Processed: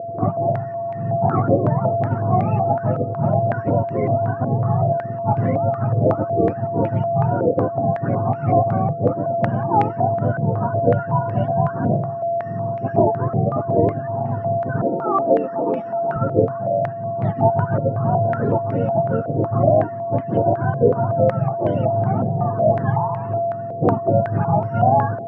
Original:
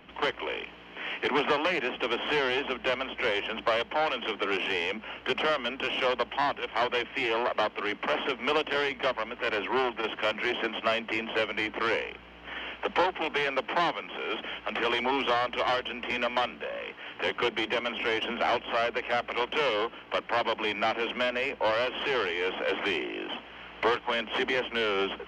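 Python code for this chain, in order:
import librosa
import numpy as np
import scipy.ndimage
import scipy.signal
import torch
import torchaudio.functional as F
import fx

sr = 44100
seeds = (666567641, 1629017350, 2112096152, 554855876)

y = fx.octave_mirror(x, sr, pivot_hz=570.0)
y = fx.highpass(y, sr, hz=220.0, slope=24, at=(14.82, 16.16))
y = y + 10.0 ** (-33.0 / 20.0) * np.sin(2.0 * np.pi * 680.0 * np.arange(len(y)) / sr)
y = fx.filter_held_lowpass(y, sr, hz=5.4, low_hz=510.0, high_hz=2200.0)
y = y * librosa.db_to_amplitude(5.0)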